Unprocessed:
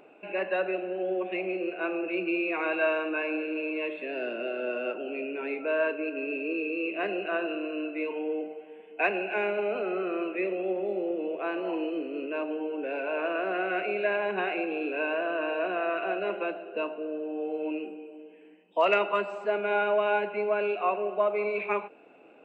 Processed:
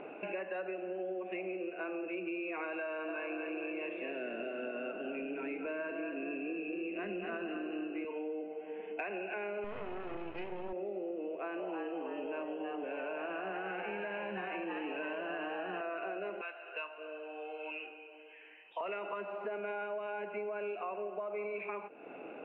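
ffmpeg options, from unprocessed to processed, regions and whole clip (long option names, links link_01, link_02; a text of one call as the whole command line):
ffmpeg -i in.wav -filter_complex "[0:a]asettb=1/sr,asplit=3[link_01][link_02][link_03];[link_01]atrim=end=2.854[link_04];[link_02]atrim=start=2.85:end=8.05,asetpts=PTS-STARTPTS,afade=type=in:duration=0.004:curve=qsin,afade=type=out:start_time=5.196:duration=0.004:curve=qsin,asubboost=boost=7.5:cutoff=190,asplit=6[link_05][link_06][link_07][link_08][link_09][link_10];[link_06]adelay=232,afreqshift=30,volume=-7dB[link_11];[link_07]adelay=464,afreqshift=60,volume=-13.7dB[link_12];[link_08]adelay=696,afreqshift=90,volume=-20.5dB[link_13];[link_09]adelay=928,afreqshift=120,volume=-27.2dB[link_14];[link_10]adelay=1160,afreqshift=150,volume=-34dB[link_15];[link_05][link_11][link_12][link_13][link_14][link_15]amix=inputs=6:normalize=0,atrim=end_sample=229320[link_16];[link_03]atrim=start=8.046[link_17];[link_04][link_16]acrossfade=duration=0.004:curve1=hsin:curve2=qsin[link_18];[link_18][link_17]acrossfade=duration=0.004:curve1=qsin:curve2=hsin,asettb=1/sr,asplit=3[link_19][link_20][link_21];[link_19]atrim=end=9.644[link_22];[link_20]atrim=start=9.64:end=10.73,asetpts=PTS-STARTPTS,afade=type=in:duration=0.004:curve=qsin,afade=type=out:start_time=1.086:duration=0.004:curve=qsin,highpass=110,asplit=2[link_23][link_24];[link_24]adelay=30,volume=-12dB[link_25];[link_23][link_25]amix=inputs=2:normalize=0,atrim=end_sample=48069,aeval=exprs='max(val(0),0)':channel_layout=same[link_26];[link_21]atrim=start=10.726[link_27];[link_22][link_26]acrossfade=duration=0.004:curve1=hsin:curve2=qsin[link_28];[link_28][link_27]acrossfade=duration=0.004:curve1=qsin:curve2=hsin,asettb=1/sr,asplit=3[link_29][link_30][link_31];[link_29]atrim=end=11.274[link_32];[link_30]atrim=start=11.27:end=15.81,asetpts=PTS-STARTPTS,afade=type=in:duration=0.004:curve=qsin,afade=type=out:start_time=4.536:duration=0.004:curve=qsin,asplit=6[link_33][link_34][link_35][link_36][link_37][link_38];[link_34]adelay=324,afreqshift=130,volume=-3.5dB[link_39];[link_35]adelay=648,afreqshift=260,volume=-12.1dB[link_40];[link_36]adelay=972,afreqshift=390,volume=-20.8dB[link_41];[link_37]adelay=1296,afreqshift=520,volume=-29.4dB[link_42];[link_38]adelay=1620,afreqshift=650,volume=-38dB[link_43];[link_33][link_39][link_40][link_41][link_42][link_43]amix=inputs=6:normalize=0,atrim=end_sample=200214,asubboost=boost=6.5:cutoff=200[link_44];[link_31]atrim=start=15.806[link_45];[link_32][link_44]acrossfade=duration=0.004:curve1=hsin:curve2=qsin[link_46];[link_46][link_45]acrossfade=duration=0.004:curve1=qsin:curve2=hsin,asettb=1/sr,asplit=3[link_47][link_48][link_49];[link_47]atrim=end=16.414[link_50];[link_48]atrim=start=16.41:end=18.81,asetpts=PTS-STARTPTS,afade=type=in:duration=0.004:curve=qsin,afade=type=out:start_time=2.396:duration=0.004:curve=qsin,highpass=1400,acompressor=mode=upward:threshold=-56dB:ratio=2.5:attack=3.2:release=140:knee=2.83:detection=peak[link_51];[link_49]atrim=start=18.806[link_52];[link_50][link_51]acrossfade=duration=0.004:curve1=hsin:curve2=qsin[link_53];[link_53][link_52]acrossfade=duration=0.004:curve1=qsin:curve2=hsin,lowpass=frequency=2800:width=0.5412,lowpass=frequency=2800:width=1.3066,alimiter=limit=-22dB:level=0:latency=1:release=47,acompressor=threshold=-47dB:ratio=5,volume=8dB" out.wav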